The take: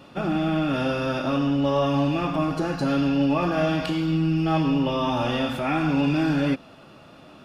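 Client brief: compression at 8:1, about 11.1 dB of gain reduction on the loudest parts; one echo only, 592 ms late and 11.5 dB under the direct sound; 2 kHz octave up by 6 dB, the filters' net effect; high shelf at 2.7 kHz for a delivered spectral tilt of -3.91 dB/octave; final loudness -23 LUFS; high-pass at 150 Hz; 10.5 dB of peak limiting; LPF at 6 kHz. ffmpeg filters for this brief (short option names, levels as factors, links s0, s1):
-af "highpass=150,lowpass=6000,equalizer=f=2000:t=o:g=4.5,highshelf=f=2700:g=8,acompressor=threshold=0.0316:ratio=8,alimiter=level_in=1.5:limit=0.0631:level=0:latency=1,volume=0.668,aecho=1:1:592:0.266,volume=4.22"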